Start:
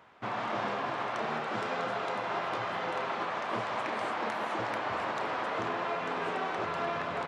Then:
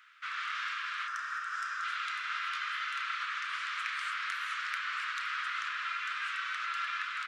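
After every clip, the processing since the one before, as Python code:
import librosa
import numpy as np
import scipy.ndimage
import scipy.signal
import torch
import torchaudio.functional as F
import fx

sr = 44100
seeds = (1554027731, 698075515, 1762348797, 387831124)

y = scipy.signal.sosfilt(scipy.signal.ellip(4, 1.0, 40, 1300.0, 'highpass', fs=sr, output='sos'), x)
y = fx.spec_box(y, sr, start_s=1.07, length_s=0.77, low_hz=1900.0, high_hz=4800.0, gain_db=-10)
y = y * 10.0 ** (4.0 / 20.0)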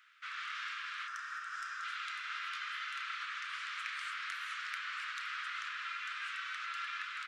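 y = fx.peak_eq(x, sr, hz=490.0, db=-9.5, octaves=2.1)
y = y * 10.0 ** (-3.0 / 20.0)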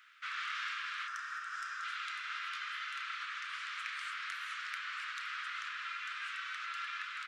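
y = fx.rider(x, sr, range_db=10, speed_s=2.0)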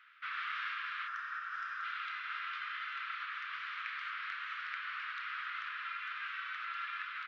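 y = scipy.ndimage.gaussian_filter1d(x, 2.4, mode='constant')
y = y * 10.0 ** (2.0 / 20.0)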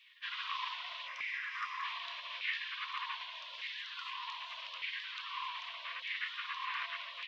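y = fx.echo_wet_bandpass(x, sr, ms=276, feedback_pct=82, hz=590.0, wet_db=-8)
y = fx.spec_gate(y, sr, threshold_db=-15, keep='weak')
y = fx.filter_lfo_highpass(y, sr, shape='saw_down', hz=0.83, low_hz=470.0, high_hz=2200.0, q=5.0)
y = y * 10.0 ** (7.5 / 20.0)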